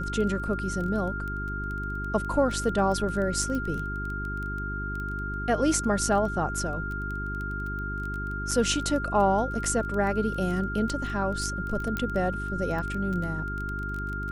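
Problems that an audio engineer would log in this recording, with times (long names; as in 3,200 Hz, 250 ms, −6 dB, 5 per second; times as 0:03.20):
surface crackle 13 per second −31 dBFS
mains hum 50 Hz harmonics 8 −34 dBFS
whistle 1,400 Hz −33 dBFS
0:03.55: click
0:08.51: drop-out 4.3 ms
0:11.97: click −16 dBFS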